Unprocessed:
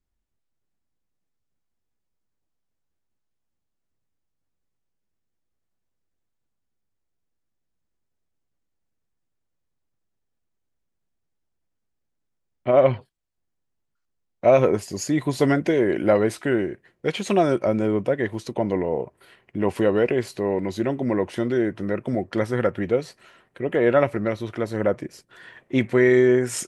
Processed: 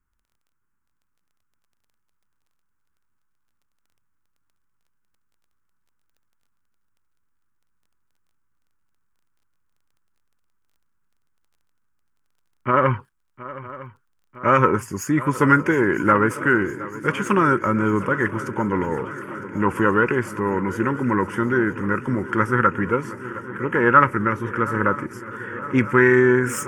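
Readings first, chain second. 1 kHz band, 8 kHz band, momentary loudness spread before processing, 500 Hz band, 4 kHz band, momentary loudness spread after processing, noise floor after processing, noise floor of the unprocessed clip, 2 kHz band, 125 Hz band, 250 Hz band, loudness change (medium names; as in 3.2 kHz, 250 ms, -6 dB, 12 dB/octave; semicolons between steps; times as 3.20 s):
+9.5 dB, -0.5 dB, 10 LU, -2.0 dB, -4.5 dB, 16 LU, -70 dBFS, -77 dBFS, +9.5 dB, +3.5 dB, +2.0 dB, +2.0 dB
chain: self-modulated delay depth 0.08 ms; high-order bell 1.1 kHz +12 dB 1.2 oct; static phaser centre 1.7 kHz, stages 4; crackle 16 per s -56 dBFS; on a send: shuffle delay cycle 957 ms, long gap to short 3:1, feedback 70%, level -17 dB; on the sum: trim +4 dB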